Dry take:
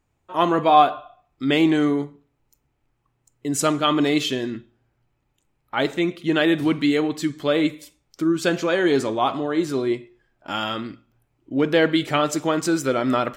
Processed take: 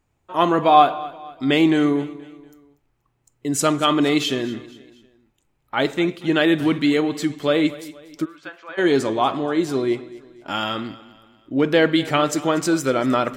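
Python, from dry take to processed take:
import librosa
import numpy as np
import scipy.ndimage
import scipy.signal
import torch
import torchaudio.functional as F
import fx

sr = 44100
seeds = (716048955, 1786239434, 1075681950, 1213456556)

p1 = fx.ladder_bandpass(x, sr, hz=1400.0, resonance_pct=20, at=(8.24, 8.77), fade=0.02)
p2 = p1 + fx.echo_feedback(p1, sr, ms=239, feedback_pct=43, wet_db=-18.5, dry=0)
y = F.gain(torch.from_numpy(p2), 1.5).numpy()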